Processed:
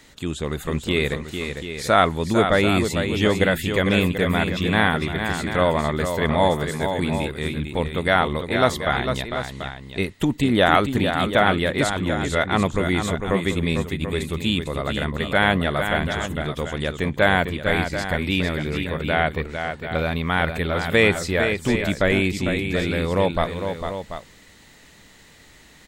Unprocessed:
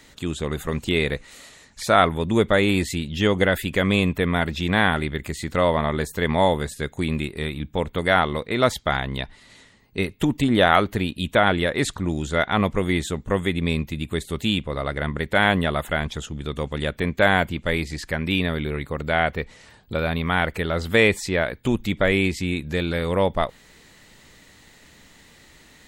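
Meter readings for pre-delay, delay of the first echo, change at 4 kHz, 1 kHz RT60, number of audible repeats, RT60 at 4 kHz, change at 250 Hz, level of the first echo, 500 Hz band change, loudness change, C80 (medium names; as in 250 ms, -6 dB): no reverb, 451 ms, +1.0 dB, no reverb, 2, no reverb, +1.0 dB, -7.0 dB, +1.0 dB, +1.0 dB, no reverb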